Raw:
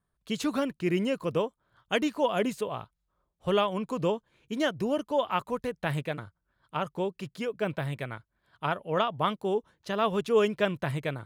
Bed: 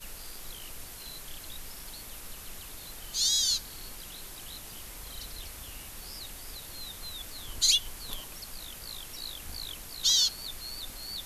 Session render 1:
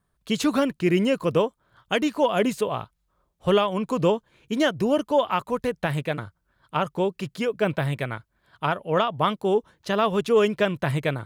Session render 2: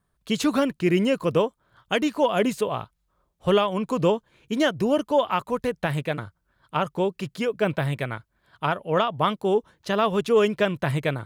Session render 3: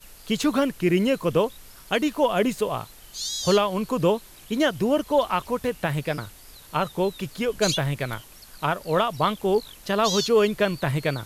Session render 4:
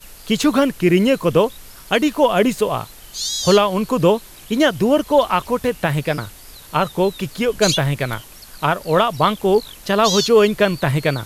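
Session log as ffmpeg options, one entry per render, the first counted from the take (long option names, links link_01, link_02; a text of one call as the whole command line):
ffmpeg -i in.wav -af "acontrast=80,alimiter=limit=-11dB:level=0:latency=1:release=339" out.wav
ffmpeg -i in.wav -af anull out.wav
ffmpeg -i in.wav -i bed.wav -filter_complex "[1:a]volume=-4dB[link_01];[0:a][link_01]amix=inputs=2:normalize=0" out.wav
ffmpeg -i in.wav -af "volume=6.5dB" out.wav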